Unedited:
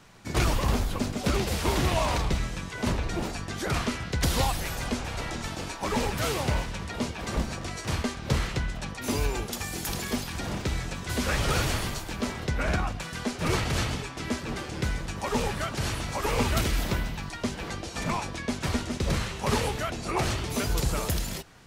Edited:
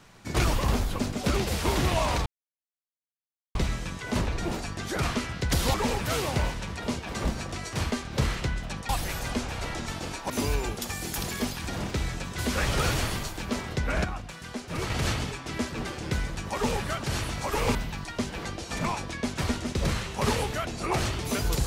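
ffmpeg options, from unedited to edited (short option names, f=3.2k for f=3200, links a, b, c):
-filter_complex "[0:a]asplit=8[a][b][c][d][e][f][g][h];[a]atrim=end=2.26,asetpts=PTS-STARTPTS,afade=t=out:st=2.256:d=0.004:c=hsin,apad=pad_dur=1.29[i];[b]atrim=start=2.26:end=4.452,asetpts=PTS-STARTPTS,afade=t=in:d=0.004:c=hsin[j];[c]atrim=start=5.858:end=9.012[k];[d]atrim=start=4.448:end=5.862[l];[e]atrim=start=9.008:end=12.752[m];[f]atrim=start=12.748:end=13.612,asetpts=PTS-STARTPTS,volume=-5.5dB[n];[g]atrim=start=13.608:end=16.462[o];[h]atrim=start=16.998[p];[i][j]concat=n=2:v=0:a=1[q];[q][k]acrossfade=d=0.004:c1=hsin:c2=hsin[r];[r][l]acrossfade=d=0.004:c1=hsin:c2=hsin[s];[s][m]acrossfade=d=0.004:c1=hsin:c2=hsin[t];[t][n]acrossfade=d=0.004:c1=hsin:c2=hsin[u];[u][o]acrossfade=d=0.004:c1=hsin:c2=hsin[v];[v][p]acrossfade=d=0.004:c1=hsin:c2=hsin"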